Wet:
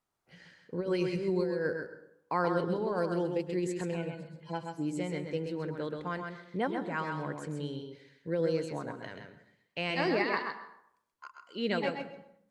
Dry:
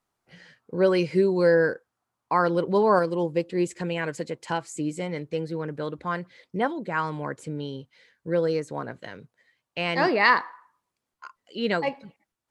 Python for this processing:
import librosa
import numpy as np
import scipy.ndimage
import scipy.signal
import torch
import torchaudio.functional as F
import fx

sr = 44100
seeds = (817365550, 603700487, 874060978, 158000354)

y = fx.hpss_only(x, sr, part='harmonic', at=(3.9, 4.82), fade=0.02)
y = fx.dynamic_eq(y, sr, hz=1100.0, q=0.89, threshold_db=-35.0, ratio=4.0, max_db=-4)
y = fx.over_compress(y, sr, threshold_db=-23.0, ratio=-0.5)
y = y + 10.0 ** (-5.5 / 20.0) * np.pad(y, (int(130 * sr / 1000.0), 0))[:len(y)]
y = fx.rev_plate(y, sr, seeds[0], rt60_s=0.68, hf_ratio=0.6, predelay_ms=95, drr_db=11.5)
y = y * 10.0 ** (-6.5 / 20.0)